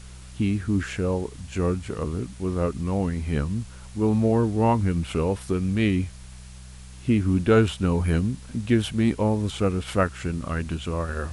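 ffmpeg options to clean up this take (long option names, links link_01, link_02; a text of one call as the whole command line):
ffmpeg -i in.wav -af "bandreject=frequency=63.1:width_type=h:width=4,bandreject=frequency=126.2:width_type=h:width=4,bandreject=frequency=189.3:width_type=h:width=4,afwtdn=0.0035" out.wav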